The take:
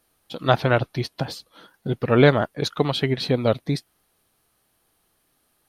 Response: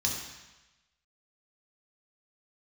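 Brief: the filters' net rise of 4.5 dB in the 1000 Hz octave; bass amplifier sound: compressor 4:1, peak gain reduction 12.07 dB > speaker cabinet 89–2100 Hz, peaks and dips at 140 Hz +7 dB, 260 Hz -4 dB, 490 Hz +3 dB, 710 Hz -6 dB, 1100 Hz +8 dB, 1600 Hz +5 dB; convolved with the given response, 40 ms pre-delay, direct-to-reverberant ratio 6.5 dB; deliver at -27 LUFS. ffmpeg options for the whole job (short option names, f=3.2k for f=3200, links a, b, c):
-filter_complex "[0:a]equalizer=f=1k:t=o:g=3,asplit=2[a][b];[1:a]atrim=start_sample=2205,adelay=40[c];[b][c]afir=irnorm=-1:irlink=0,volume=-12.5dB[d];[a][d]amix=inputs=2:normalize=0,acompressor=threshold=-22dB:ratio=4,highpass=f=89:w=0.5412,highpass=f=89:w=1.3066,equalizer=f=140:t=q:w=4:g=7,equalizer=f=260:t=q:w=4:g=-4,equalizer=f=490:t=q:w=4:g=3,equalizer=f=710:t=q:w=4:g=-6,equalizer=f=1.1k:t=q:w=4:g=8,equalizer=f=1.6k:t=q:w=4:g=5,lowpass=f=2.1k:w=0.5412,lowpass=f=2.1k:w=1.3066,volume=-1.5dB"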